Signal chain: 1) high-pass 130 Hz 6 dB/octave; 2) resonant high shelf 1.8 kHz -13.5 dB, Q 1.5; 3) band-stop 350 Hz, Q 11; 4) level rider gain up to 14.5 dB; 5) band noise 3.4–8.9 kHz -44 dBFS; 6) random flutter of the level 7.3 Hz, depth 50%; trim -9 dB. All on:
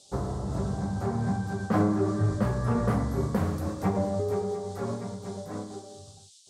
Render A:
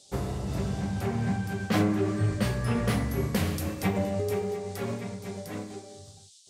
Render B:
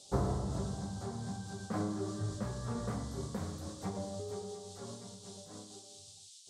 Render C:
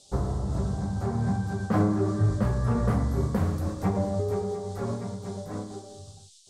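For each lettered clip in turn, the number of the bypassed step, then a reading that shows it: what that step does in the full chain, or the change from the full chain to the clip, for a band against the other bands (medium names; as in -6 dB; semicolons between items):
2, 4 kHz band +9.0 dB; 4, crest factor change +5.0 dB; 1, 125 Hz band +3.0 dB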